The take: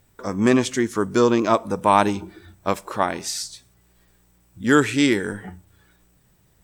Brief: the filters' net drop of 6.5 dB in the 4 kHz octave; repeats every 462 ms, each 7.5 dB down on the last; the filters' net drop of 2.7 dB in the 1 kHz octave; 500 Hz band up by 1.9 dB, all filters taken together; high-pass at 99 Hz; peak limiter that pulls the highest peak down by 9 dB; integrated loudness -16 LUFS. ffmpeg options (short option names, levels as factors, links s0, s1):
-af "highpass=99,equalizer=f=500:t=o:g=3.5,equalizer=f=1000:t=o:g=-4,equalizer=f=4000:t=o:g=-8.5,alimiter=limit=0.266:level=0:latency=1,aecho=1:1:462|924|1386|1848|2310:0.422|0.177|0.0744|0.0312|0.0131,volume=2.66"